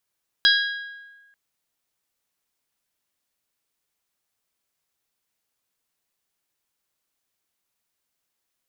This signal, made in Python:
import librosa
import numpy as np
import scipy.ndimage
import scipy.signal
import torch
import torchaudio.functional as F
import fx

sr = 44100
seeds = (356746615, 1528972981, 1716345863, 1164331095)

y = fx.strike_glass(sr, length_s=0.89, level_db=-15.5, body='bell', hz=1640.0, decay_s=1.3, tilt_db=1.0, modes=4)